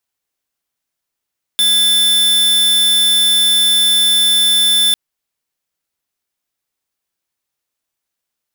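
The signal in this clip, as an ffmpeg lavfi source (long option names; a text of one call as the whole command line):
ffmpeg -f lavfi -i "aevalsrc='0.251*(2*lt(mod(3520*t,1),0.5)-1)':duration=3.35:sample_rate=44100" out.wav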